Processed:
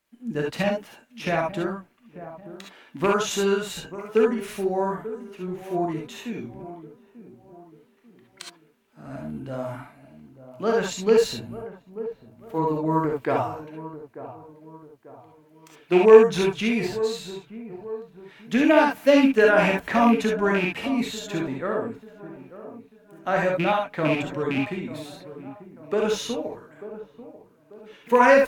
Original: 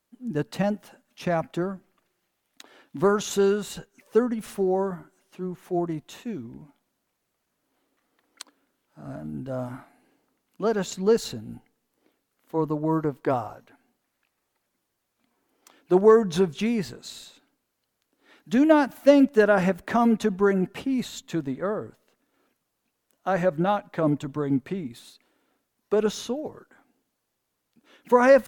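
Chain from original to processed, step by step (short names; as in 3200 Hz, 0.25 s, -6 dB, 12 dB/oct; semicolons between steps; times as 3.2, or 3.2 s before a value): rattling part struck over -25 dBFS, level -23 dBFS; bell 2300 Hz +7 dB 1.2 oct; on a send: dark delay 0.891 s, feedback 40%, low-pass 1100 Hz, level -14 dB; on the sum: non-linear reverb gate 90 ms rising, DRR -0.5 dB; gain -2 dB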